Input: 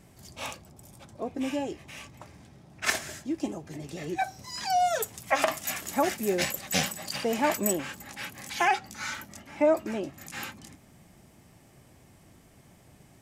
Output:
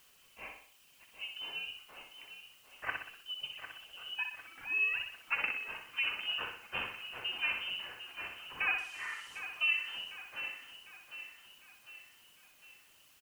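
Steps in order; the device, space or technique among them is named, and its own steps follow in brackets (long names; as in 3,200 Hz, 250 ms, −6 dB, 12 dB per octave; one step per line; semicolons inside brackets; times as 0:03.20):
scrambled radio voice (band-pass filter 310–2,700 Hz; voice inversion scrambler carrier 3,300 Hz; white noise bed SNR 23 dB)
reverb reduction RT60 0.7 s
0:08.78–0:09.39: meter weighting curve ITU-R 468
repeating echo 62 ms, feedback 47%, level −6 dB
repeating echo 752 ms, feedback 51%, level −11 dB
level −8.5 dB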